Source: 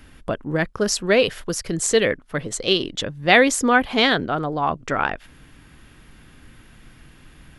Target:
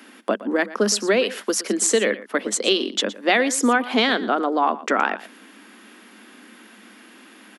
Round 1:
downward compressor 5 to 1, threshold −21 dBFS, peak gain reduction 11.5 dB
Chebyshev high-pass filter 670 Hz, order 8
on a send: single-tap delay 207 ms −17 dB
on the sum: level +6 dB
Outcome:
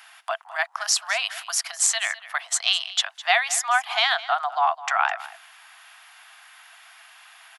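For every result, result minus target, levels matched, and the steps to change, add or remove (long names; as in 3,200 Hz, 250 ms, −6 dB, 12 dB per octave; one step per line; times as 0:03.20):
echo 90 ms late; 500 Hz band −10.0 dB
change: single-tap delay 117 ms −17 dB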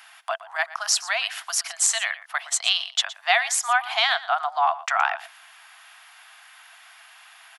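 500 Hz band −10.0 dB
change: Chebyshev high-pass filter 200 Hz, order 8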